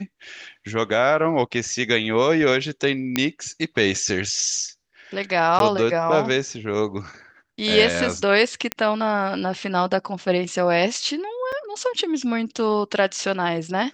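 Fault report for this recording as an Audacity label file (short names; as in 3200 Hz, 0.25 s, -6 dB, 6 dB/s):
3.160000	3.160000	pop -5 dBFS
5.590000	5.600000	gap 12 ms
8.720000	8.720000	pop -6 dBFS
11.520000	11.530000	gap 5.4 ms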